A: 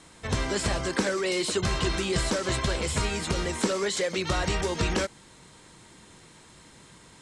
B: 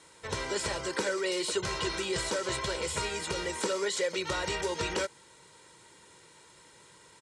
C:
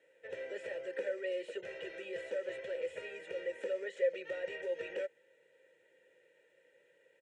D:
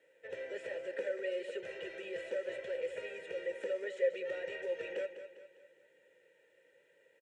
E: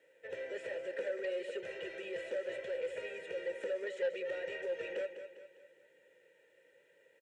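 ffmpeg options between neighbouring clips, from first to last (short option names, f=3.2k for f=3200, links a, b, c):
-af "highpass=f=260:p=1,aecho=1:1:2.1:0.53,volume=-4dB"
-filter_complex "[0:a]asplit=3[a][b][c];[a]bandpass=f=530:t=q:w=8,volume=0dB[d];[b]bandpass=f=1.84k:t=q:w=8,volume=-6dB[e];[c]bandpass=f=2.48k:t=q:w=8,volume=-9dB[f];[d][e][f]amix=inputs=3:normalize=0,equalizer=f=4.6k:w=2:g=-12,volume=1.5dB"
-af "aecho=1:1:201|402|603|804|1005:0.282|0.13|0.0596|0.0274|0.0126"
-af "aeval=exprs='0.0891*(cos(1*acos(clip(val(0)/0.0891,-1,1)))-cos(1*PI/2))+0.00224*(cos(2*acos(clip(val(0)/0.0891,-1,1)))-cos(2*PI/2))':c=same,asoftclip=type=tanh:threshold=-29.5dB,volume=1dB"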